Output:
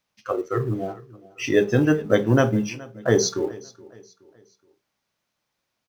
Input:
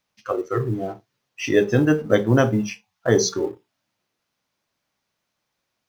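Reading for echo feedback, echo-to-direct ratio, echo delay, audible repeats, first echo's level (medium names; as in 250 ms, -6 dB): 40%, -20.5 dB, 422 ms, 2, -21.0 dB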